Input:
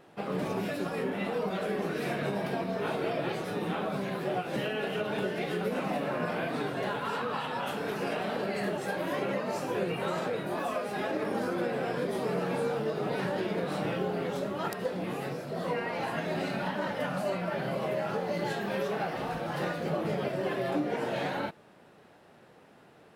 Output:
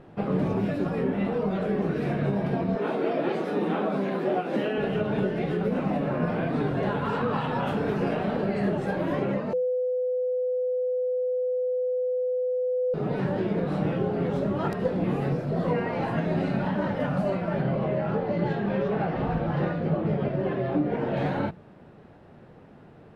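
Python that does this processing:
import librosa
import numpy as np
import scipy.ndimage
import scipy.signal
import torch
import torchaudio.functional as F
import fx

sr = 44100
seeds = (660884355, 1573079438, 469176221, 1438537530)

y = fx.highpass(x, sr, hz=220.0, slope=24, at=(2.75, 4.78))
y = fx.lowpass(y, sr, hz=4200.0, slope=12, at=(17.62, 21.17))
y = fx.edit(y, sr, fx.bleep(start_s=9.53, length_s=3.41, hz=503.0, db=-22.0), tone=tone)
y = fx.riaa(y, sr, side='playback')
y = fx.hum_notches(y, sr, base_hz=60, count=3)
y = fx.rider(y, sr, range_db=10, speed_s=0.5)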